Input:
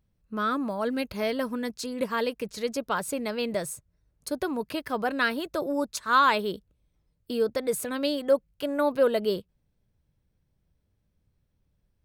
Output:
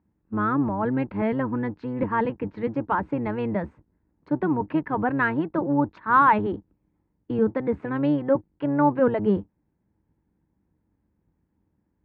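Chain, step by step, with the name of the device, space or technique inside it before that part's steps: sub-octave bass pedal (octaver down 1 oct, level +1 dB; speaker cabinet 73–2100 Hz, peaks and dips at 120 Hz -3 dB, 200 Hz +6 dB, 310 Hz +10 dB, 610 Hz -3 dB, 900 Hz +10 dB, 1800 Hz +3 dB)

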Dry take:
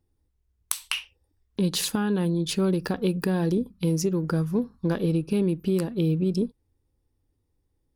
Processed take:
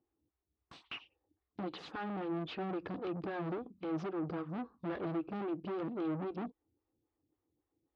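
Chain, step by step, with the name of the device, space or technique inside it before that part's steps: vibe pedal into a guitar amplifier (photocell phaser 3.7 Hz; tube stage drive 37 dB, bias 0.55; speaker cabinet 89–3600 Hz, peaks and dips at 320 Hz +9 dB, 740 Hz +6 dB, 1200 Hz +6 dB); gain -2 dB

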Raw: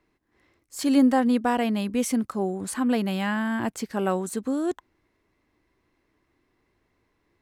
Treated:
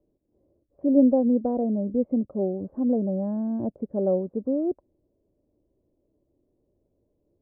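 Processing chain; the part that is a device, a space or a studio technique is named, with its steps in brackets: under water (LPF 560 Hz 24 dB/oct; bell 580 Hz +11 dB 0.32 oct)

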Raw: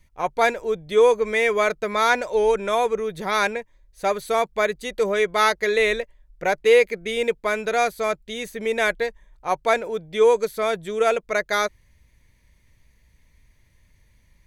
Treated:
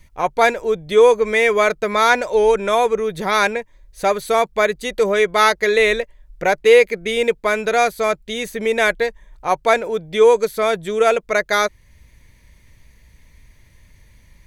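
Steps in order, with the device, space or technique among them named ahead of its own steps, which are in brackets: parallel compression (in parallel at -2 dB: compressor, threshold -38 dBFS, peak gain reduction 24 dB); on the sum: gain +4 dB

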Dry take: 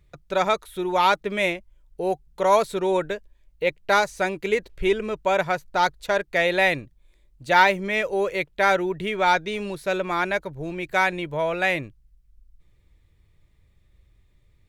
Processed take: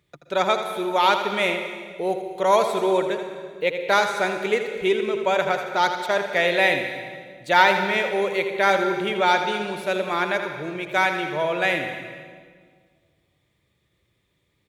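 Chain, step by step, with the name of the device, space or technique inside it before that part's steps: PA in a hall (HPF 170 Hz 12 dB/oct; bell 3300 Hz +4.5 dB 0.25 oct; echo 81 ms -9 dB; reverb RT60 1.7 s, pre-delay 0.118 s, DRR 8.5 dB)

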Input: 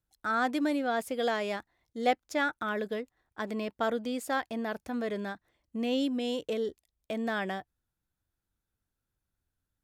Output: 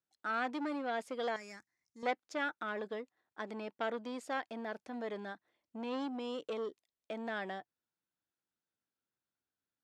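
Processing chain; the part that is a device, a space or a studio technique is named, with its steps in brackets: public-address speaker with an overloaded transformer (core saturation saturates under 1300 Hz; BPF 230–6200 Hz); 1.36–2.03 EQ curve 130 Hz 0 dB, 650 Hz -18 dB, 2300 Hz -3 dB, 3300 Hz -20 dB, 5400 Hz +8 dB; gain -5 dB

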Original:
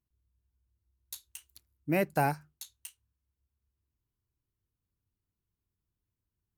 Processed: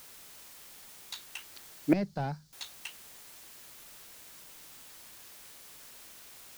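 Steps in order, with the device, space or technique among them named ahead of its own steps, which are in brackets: tape answering machine (BPF 340–3100 Hz; soft clip -21 dBFS, distortion -19 dB; wow and flutter; white noise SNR 22 dB); 1.93–2.53 EQ curve 200 Hz 0 dB, 300 Hz -18 dB, 2600 Hz -23 dB, 4700 Hz -7 dB, 11000 Hz -20 dB; gain +13.5 dB

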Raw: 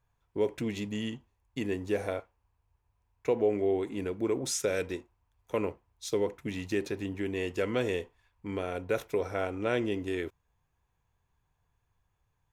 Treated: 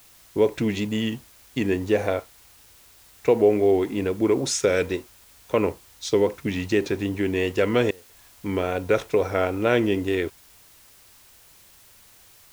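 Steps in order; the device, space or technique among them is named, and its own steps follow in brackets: worn cassette (LPF 7000 Hz; wow and flutter; level dips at 7.91, 0.184 s -25 dB; white noise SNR 28 dB); gain +9 dB

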